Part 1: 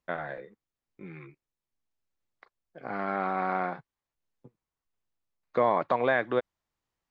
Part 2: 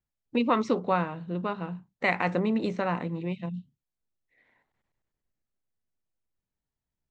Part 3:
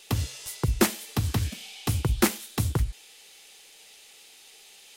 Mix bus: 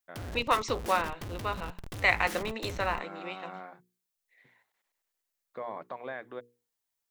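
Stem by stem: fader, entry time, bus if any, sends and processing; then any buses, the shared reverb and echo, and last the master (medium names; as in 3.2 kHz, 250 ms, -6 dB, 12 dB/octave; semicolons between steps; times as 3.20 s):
-14.0 dB, 0.00 s, no send, hum notches 60/120/180/240/300/360/420/480 Hz
0.0 dB, 0.00 s, no send, high-pass 380 Hz 12 dB/octave; tilt EQ +3 dB/octave
-10.0 dB, 0.05 s, no send, rippled EQ curve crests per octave 1.2, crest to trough 6 dB; Schmitt trigger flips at -33.5 dBFS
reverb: none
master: none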